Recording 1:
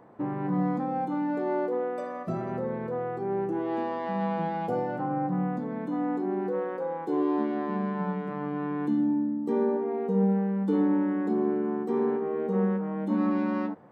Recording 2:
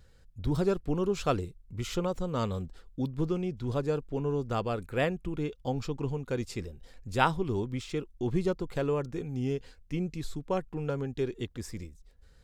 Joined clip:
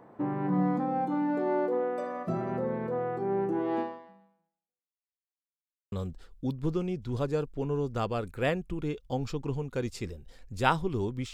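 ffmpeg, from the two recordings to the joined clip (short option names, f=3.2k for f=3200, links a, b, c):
-filter_complex "[0:a]apad=whole_dur=11.33,atrim=end=11.33,asplit=2[a][b];[a]atrim=end=5.06,asetpts=PTS-STARTPTS,afade=t=out:st=3.8:d=1.26:c=exp[c];[b]atrim=start=5.06:end=5.92,asetpts=PTS-STARTPTS,volume=0[d];[1:a]atrim=start=2.47:end=7.88,asetpts=PTS-STARTPTS,afade=t=in:d=0.004:c=hsin[e];[c][d][e]concat=n=3:v=0:a=1"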